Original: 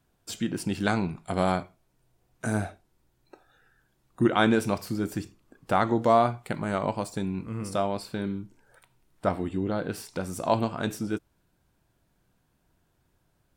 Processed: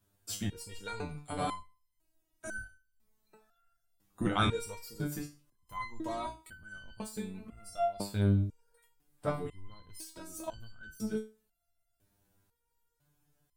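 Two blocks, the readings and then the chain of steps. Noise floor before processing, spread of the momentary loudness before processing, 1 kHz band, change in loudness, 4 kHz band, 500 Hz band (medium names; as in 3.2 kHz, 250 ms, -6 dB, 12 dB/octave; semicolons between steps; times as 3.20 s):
-71 dBFS, 12 LU, -10.5 dB, -8.5 dB, -5.0 dB, -11.0 dB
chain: octave divider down 1 oct, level -1 dB; treble shelf 6.8 kHz +11 dB; resonator arpeggio 2 Hz 100–1500 Hz; trim +4 dB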